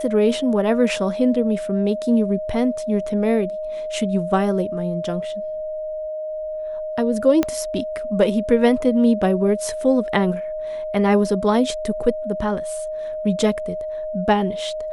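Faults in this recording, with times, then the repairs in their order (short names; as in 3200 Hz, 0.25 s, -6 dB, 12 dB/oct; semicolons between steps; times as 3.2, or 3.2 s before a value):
tone 620 Hz -25 dBFS
7.43 pop -7 dBFS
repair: de-click; notch 620 Hz, Q 30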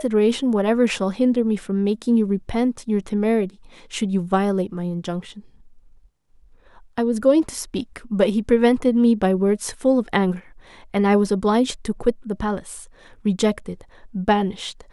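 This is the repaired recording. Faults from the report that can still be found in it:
7.43 pop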